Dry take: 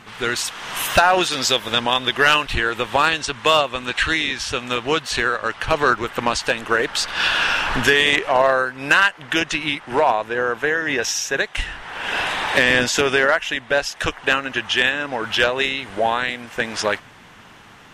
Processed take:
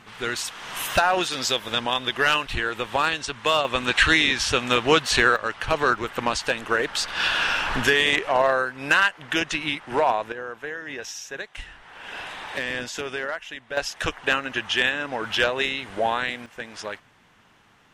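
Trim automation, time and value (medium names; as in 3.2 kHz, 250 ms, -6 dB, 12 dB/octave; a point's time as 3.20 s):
-5.5 dB
from 3.65 s +2 dB
from 5.36 s -4 dB
from 10.32 s -13 dB
from 13.77 s -4 dB
from 16.46 s -12.5 dB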